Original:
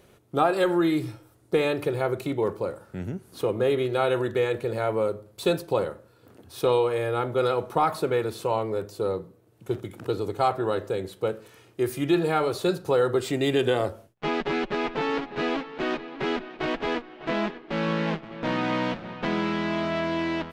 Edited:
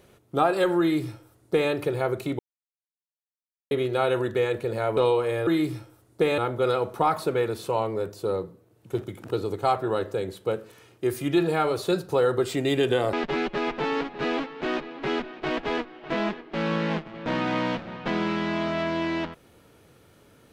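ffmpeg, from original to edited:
-filter_complex "[0:a]asplit=7[a][b][c][d][e][f][g];[a]atrim=end=2.39,asetpts=PTS-STARTPTS,afade=t=out:st=2.386:d=0.004:c=hsin[h];[b]atrim=start=2.39:end=3.71,asetpts=PTS-STARTPTS,volume=0[i];[c]atrim=start=3.71:end=4.972,asetpts=PTS-STARTPTS,afade=t=in:d=0.004:c=hsin[j];[d]atrim=start=6.638:end=7.142[k];[e]atrim=start=0.798:end=1.712[l];[f]atrim=start=7.138:end=13.892[m];[g]atrim=start=14.298[n];[h][i][j]concat=n=3:v=0:a=1[o];[o][k]acrossfade=d=0.004:c1=hsin:c2=hsin[p];[p][l]acrossfade=d=0.004:c1=hsin:c2=hsin[q];[q][m]acrossfade=d=0.004:c1=hsin:c2=hsin[r];[r][n]acrossfade=d=0.004:c1=hsin:c2=hsin"

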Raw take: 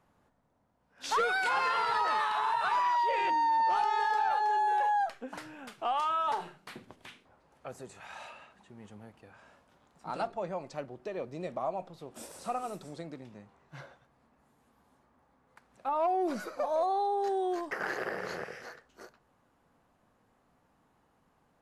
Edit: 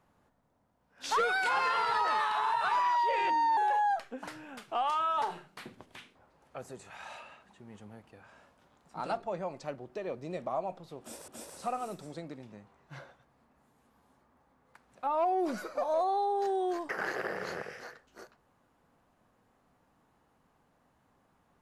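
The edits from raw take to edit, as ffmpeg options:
-filter_complex "[0:a]asplit=3[a][b][c];[a]atrim=end=3.572[d];[b]atrim=start=4.668:end=12.382[e];[c]atrim=start=12.098[f];[d][e]acrossfade=d=0.004:c1=hsin:c2=hsin[g];[g][f]acrossfade=d=0.004:c1=hsin:c2=hsin"

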